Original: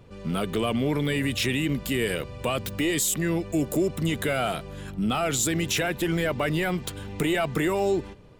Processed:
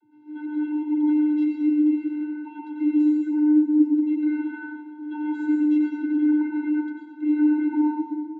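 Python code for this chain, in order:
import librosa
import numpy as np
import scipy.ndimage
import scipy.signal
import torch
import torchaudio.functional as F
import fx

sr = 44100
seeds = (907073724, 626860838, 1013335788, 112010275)

y = scipy.signal.sosfilt(scipy.signal.butter(2, 1900.0, 'lowpass', fs=sr, output='sos'), x)
y = fx.vocoder(y, sr, bands=32, carrier='square', carrier_hz=301.0)
y = fx.rev_plate(y, sr, seeds[0], rt60_s=1.5, hf_ratio=0.65, predelay_ms=85, drr_db=-1.5)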